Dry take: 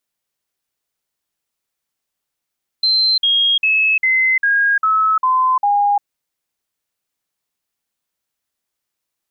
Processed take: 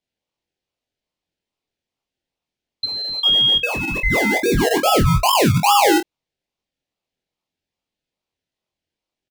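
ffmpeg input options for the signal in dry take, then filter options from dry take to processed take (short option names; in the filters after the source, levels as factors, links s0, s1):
-f lavfi -i "aevalsrc='0.266*clip(min(mod(t,0.4),0.35-mod(t,0.4))/0.005,0,1)*sin(2*PI*4110*pow(2,-floor(t/0.4)/3)*mod(t,0.4))':d=3.2:s=44100"
-filter_complex "[0:a]lowpass=3600,acrossover=split=2000[s0][s1];[s0]acrusher=samples=30:mix=1:aa=0.000001:lfo=1:lforange=18:lforate=2.4[s2];[s2][s1]amix=inputs=2:normalize=0,aecho=1:1:23|48:0.668|0.266"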